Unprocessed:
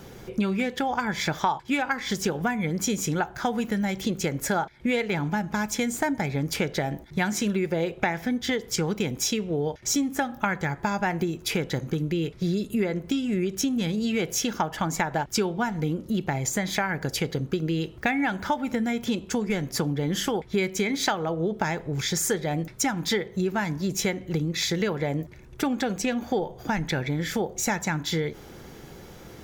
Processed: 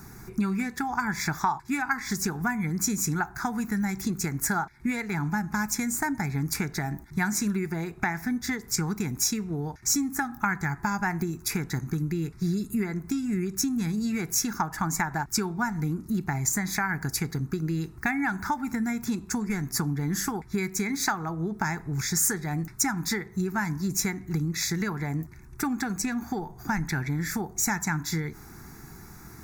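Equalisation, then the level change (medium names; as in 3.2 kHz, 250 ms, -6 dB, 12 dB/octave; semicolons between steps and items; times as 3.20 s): treble shelf 4.7 kHz +5.5 dB; static phaser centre 1.3 kHz, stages 4; +1.0 dB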